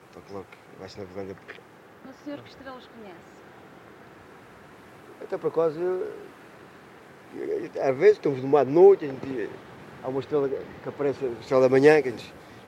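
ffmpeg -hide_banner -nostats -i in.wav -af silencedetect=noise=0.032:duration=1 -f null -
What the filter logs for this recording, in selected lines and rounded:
silence_start: 2.73
silence_end: 5.22 | silence_duration: 2.49
silence_start: 6.10
silence_end: 7.36 | silence_duration: 1.26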